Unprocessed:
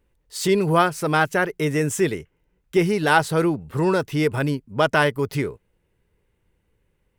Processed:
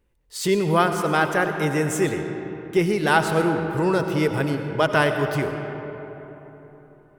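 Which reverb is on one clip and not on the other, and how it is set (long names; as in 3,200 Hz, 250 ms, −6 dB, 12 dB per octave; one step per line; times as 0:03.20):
comb and all-pass reverb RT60 3.9 s, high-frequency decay 0.45×, pre-delay 50 ms, DRR 6 dB
level −1.5 dB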